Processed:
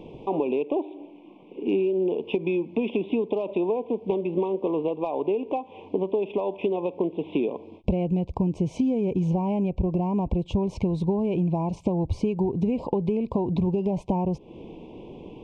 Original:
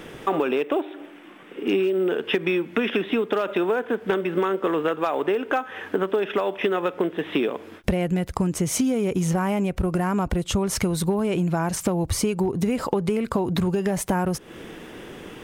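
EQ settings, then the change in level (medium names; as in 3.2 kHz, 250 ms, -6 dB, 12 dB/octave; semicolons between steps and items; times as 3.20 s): elliptic band-stop 1–2.4 kHz, stop band 40 dB; tape spacing loss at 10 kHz 36 dB; 0.0 dB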